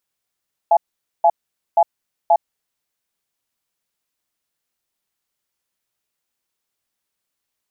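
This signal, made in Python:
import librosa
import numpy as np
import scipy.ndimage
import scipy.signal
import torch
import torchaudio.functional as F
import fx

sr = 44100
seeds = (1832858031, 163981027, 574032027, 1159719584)

y = fx.cadence(sr, length_s=1.96, low_hz=680.0, high_hz=844.0, on_s=0.06, off_s=0.47, level_db=-12.0)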